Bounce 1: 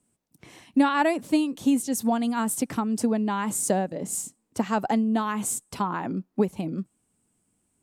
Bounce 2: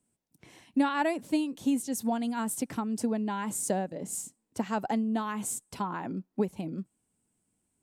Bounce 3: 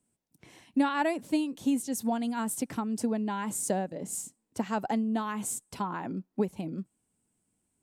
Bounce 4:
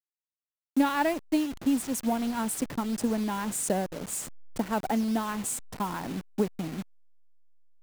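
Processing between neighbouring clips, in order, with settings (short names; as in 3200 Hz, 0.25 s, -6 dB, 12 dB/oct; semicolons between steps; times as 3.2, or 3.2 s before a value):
notch 1200 Hz, Q 13; gain -5.5 dB
nothing audible
level-crossing sampler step -37 dBFS; gain +2 dB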